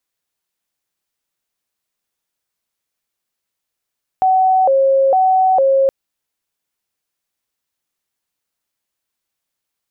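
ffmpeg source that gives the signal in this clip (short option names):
-f lavfi -i "aevalsrc='0.335*sin(2*PI*(646.5*t+106.5/1.1*(0.5-abs(mod(1.1*t,1)-0.5))))':d=1.67:s=44100"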